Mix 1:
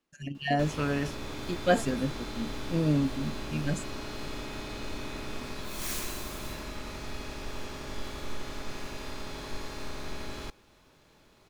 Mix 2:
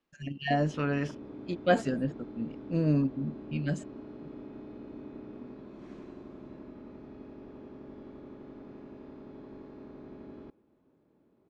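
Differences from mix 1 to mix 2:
background: add band-pass 280 Hz, Q 1.5; master: add air absorption 99 m

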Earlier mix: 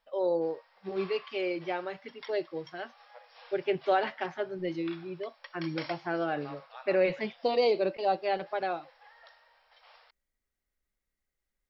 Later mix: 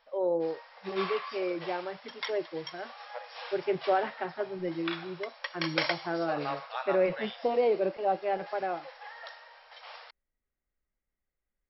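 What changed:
speech: add Gaussian blur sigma 3.2 samples; background +11.0 dB

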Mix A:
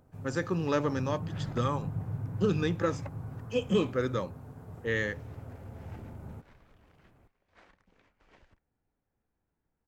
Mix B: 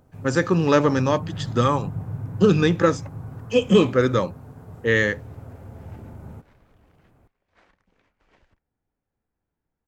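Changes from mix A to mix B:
speech +11.0 dB; first sound +4.5 dB

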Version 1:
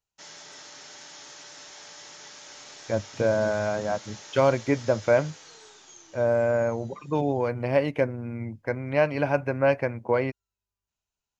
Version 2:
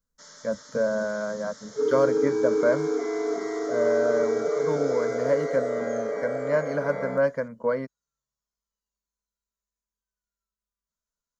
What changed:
speech: entry -2.45 s; second sound: unmuted; reverb: on, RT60 0.40 s; master: add fixed phaser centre 520 Hz, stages 8

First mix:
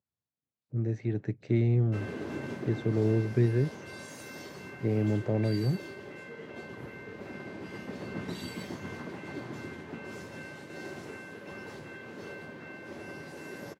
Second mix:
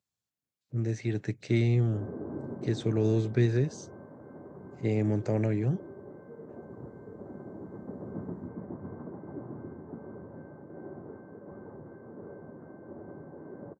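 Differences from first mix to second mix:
background: add Gaussian blur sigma 9.7 samples; master: remove LPF 1100 Hz 6 dB/oct

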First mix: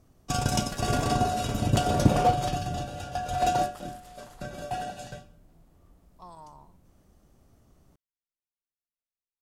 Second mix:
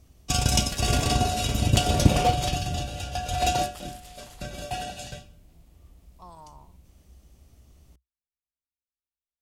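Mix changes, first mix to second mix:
background: add resonant high shelf 1900 Hz +6.5 dB, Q 1.5; master: add bell 63 Hz +14 dB 0.7 oct

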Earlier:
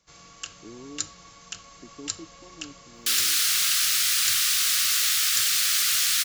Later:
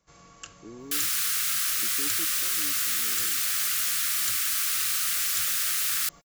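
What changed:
second sound: entry -2.15 s; master: add bell 4200 Hz -9 dB 2 oct

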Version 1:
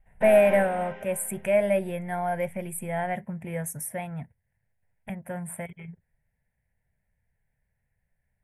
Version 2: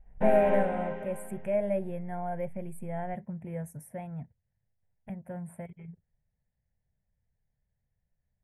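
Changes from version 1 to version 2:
speech -10.5 dB; master: add tilt shelf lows +7.5 dB, about 1200 Hz

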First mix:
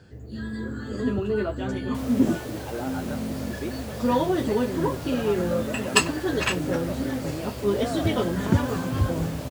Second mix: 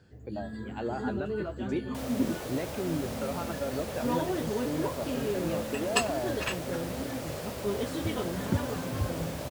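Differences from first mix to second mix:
speech: entry -1.90 s; first sound -8.0 dB

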